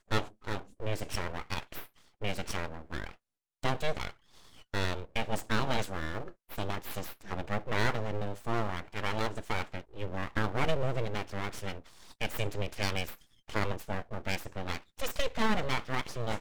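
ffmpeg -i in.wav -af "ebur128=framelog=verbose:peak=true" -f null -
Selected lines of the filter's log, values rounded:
Integrated loudness:
  I:         -35.5 LUFS
  Threshold: -45.8 LUFS
Loudness range:
  LRA:         3.6 LU
  Threshold: -55.9 LUFS
  LRA low:   -38.3 LUFS
  LRA high:  -34.7 LUFS
True peak:
  Peak:      -12.7 dBFS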